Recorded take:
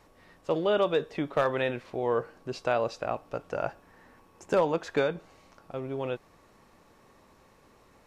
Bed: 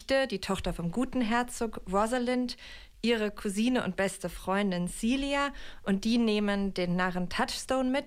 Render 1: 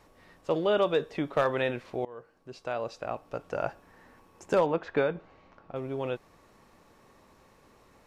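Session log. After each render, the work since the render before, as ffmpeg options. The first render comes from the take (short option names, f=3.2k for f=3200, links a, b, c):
-filter_complex "[0:a]asettb=1/sr,asplit=3[a][b][c];[a]atrim=end=4.664[d];[b]atrim=start=4.66:end=5.76,asetpts=PTS-STARTPTS,afade=t=in:d=0.004:c=qsin,afade=t=out:st=1.096:d=0.004:c=qsin,lowpass=2.8k[e];[c]atrim=start=5.756[f];[d][e]acrossfade=d=0.004:c1=hsin:c2=qsin[g];[g][f]acrossfade=d=0.004:c1=qsin:c2=hsin,asplit=2[h][i];[h]atrim=end=2.05,asetpts=PTS-STARTPTS,afade=t=out:st=2.046:d=0.004:c=hsin:silence=0.0749894[j];[i]atrim=start=2.05,asetpts=PTS-STARTPTS,afade=t=in:d=1.55:silence=0.0749894[k];[j][k]concat=n=2:v=0:a=1"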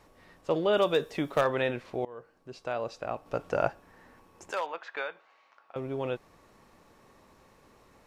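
-filter_complex "[0:a]asettb=1/sr,asplit=3[a][b][c];[a]atrim=end=0.734[d];[b]atrim=start=0.73:end=1.41,asetpts=PTS-STARTPTS,afade=t=in:d=0.004:c=qsin,afade=t=out:st=0.676:d=0.004:c=qsin,aemphasis=mode=production:type=50kf[e];[c]atrim=start=1.406[f];[d][e]acrossfade=d=0.004:c1=hsin:c2=qsin[g];[g][f]acrossfade=d=0.004:c1=qsin:c2=hsin,asettb=1/sr,asplit=3[h][i][j];[h]atrim=end=4.514[k];[i]atrim=start=4.51:end=5.76,asetpts=PTS-STARTPTS,afade=t=in:d=0.004:c=qsin,afade=t=out:st=1.246:d=0.004:c=qsin,highpass=1k[l];[j]atrim=start=5.756[m];[k][l]acrossfade=d=0.004:c1=hsin:c2=qsin[n];[n][m]acrossfade=d=0.004:c1=qsin:c2=hsin,asplit=3[o][p][q];[o]atrim=end=3.262[r];[p]atrim=start=3.258:end=3.682,asetpts=PTS-STARTPTS,volume=4dB[s];[q]atrim=start=3.678[t];[r][s]acrossfade=d=0.004:c1=hsin:c2=hsin[u];[u][t]acrossfade=d=0.004:c1=hsin:c2=hsin"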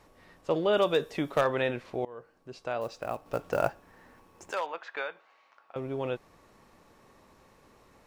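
-filter_complex "[0:a]asettb=1/sr,asplit=3[a][b][c];[a]atrim=end=2.814[d];[b]atrim=start=2.81:end=4.54,asetpts=PTS-STARTPTS,afade=t=in:d=0.004:c=qsin,afade=t=out:st=1.726:d=0.004:c=qsin,acrusher=bits=6:mode=log:mix=0:aa=0.000001[e];[c]atrim=start=4.536[f];[d][e]acrossfade=d=0.004:c1=hsin:c2=qsin[g];[g][f]acrossfade=d=0.004:c1=qsin:c2=hsin"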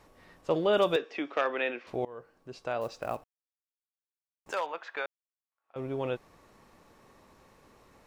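-filter_complex "[0:a]asettb=1/sr,asplit=3[a][b][c];[a]atrim=end=0.964[d];[b]atrim=start=0.96:end=1.87,asetpts=PTS-STARTPTS,afade=t=in:d=0.004:c=qsin,afade=t=out:st=0.906:d=0.004:c=qsin,highpass=f=290:w=0.5412,highpass=f=290:w=1.3066,equalizer=f=410:t=q:w=4:g=-4,equalizer=f=590:t=q:w=4:g=-5,equalizer=f=940:t=q:w=4:g=-5,equalizer=f=2.5k:t=q:w=4:g=4,equalizer=f=4k:t=q:w=4:g=-7,lowpass=f=5.1k:w=0.5412,lowpass=f=5.1k:w=1.3066[e];[c]atrim=start=1.866[f];[d][e]acrossfade=d=0.004:c1=hsin:c2=qsin[g];[g][f]acrossfade=d=0.004:c1=qsin:c2=hsin,asplit=4[h][i][j][k];[h]atrim=end=3.24,asetpts=PTS-STARTPTS,afade=t=out:st=3.236:d=0.004:c=hsin[l];[i]atrim=start=3.24:end=4.46,asetpts=PTS-STARTPTS,volume=0[m];[j]atrim=start=4.46:end=5.06,asetpts=PTS-STARTPTS,afade=t=in:d=0.004:c=hsin,afade=t=out:st=0.596:d=0.004:c=hsin[n];[k]atrim=start=5.06,asetpts=PTS-STARTPTS,afade=t=in:d=0.74:c=exp[o];[l][m][n][o]concat=n=4:v=0:a=1"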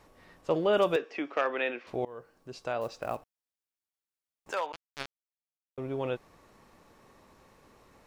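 -filter_complex "[0:a]asettb=1/sr,asplit=3[a][b][c];[a]atrim=end=0.514[d];[b]atrim=start=0.51:end=1.52,asetpts=PTS-STARTPTS,afade=t=in:d=0.004:c=qsin,afade=t=out:st=1.006:d=0.004:c=qsin,equalizer=f=3.6k:t=o:w=0.2:g=-7.5[e];[c]atrim=start=1.516[f];[d][e]acrossfade=d=0.004:c1=hsin:c2=qsin[g];[g][f]acrossfade=d=0.004:c1=qsin:c2=hsin,asettb=1/sr,asplit=3[h][i][j];[h]atrim=end=2.064[k];[i]atrim=start=2.06:end=2.71,asetpts=PTS-STARTPTS,afade=t=in:d=0.004:c=qsin,afade=t=out:st=0.646:d=0.004:c=qsin,bass=f=250:g=1,treble=f=4k:g=5[l];[j]atrim=start=2.706[m];[k][l]acrossfade=d=0.004:c1=hsin:c2=qsin[n];[n][m]acrossfade=d=0.004:c1=qsin:c2=hsin,asettb=1/sr,asplit=3[o][p][q];[o]atrim=end=4.724[r];[p]atrim=start=4.72:end=5.78,asetpts=PTS-STARTPTS,afade=t=in:d=0.004:c=qsin,afade=t=out:st=1.056:d=0.004:c=qsin,acrusher=bits=3:mix=0:aa=0.5[s];[q]atrim=start=5.776[t];[r][s]acrossfade=d=0.004:c1=hsin:c2=qsin[u];[u][t]acrossfade=d=0.004:c1=qsin:c2=hsin"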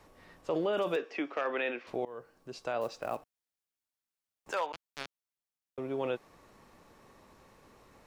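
-filter_complex "[0:a]acrossover=split=170[a][b];[a]acompressor=threshold=-57dB:ratio=6[c];[c][b]amix=inputs=2:normalize=0,alimiter=limit=-23dB:level=0:latency=1:release=17"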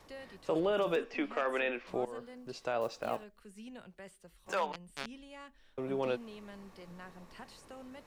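-filter_complex "[1:a]volume=-21.5dB[a];[0:a][a]amix=inputs=2:normalize=0"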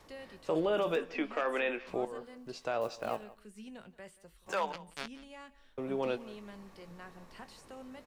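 -filter_complex "[0:a]asplit=2[a][b];[b]adelay=19,volume=-13dB[c];[a][c]amix=inputs=2:normalize=0,aecho=1:1:178:0.106"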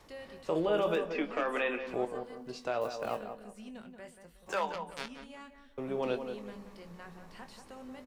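-filter_complex "[0:a]asplit=2[a][b];[b]adelay=24,volume=-11dB[c];[a][c]amix=inputs=2:normalize=0,asplit=2[d][e];[e]adelay=182,lowpass=f=1.5k:p=1,volume=-7.5dB,asplit=2[f][g];[g]adelay=182,lowpass=f=1.5k:p=1,volume=0.34,asplit=2[h][i];[i]adelay=182,lowpass=f=1.5k:p=1,volume=0.34,asplit=2[j][k];[k]adelay=182,lowpass=f=1.5k:p=1,volume=0.34[l];[d][f][h][j][l]amix=inputs=5:normalize=0"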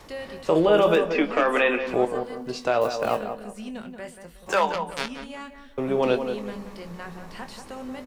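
-af "volume=11dB"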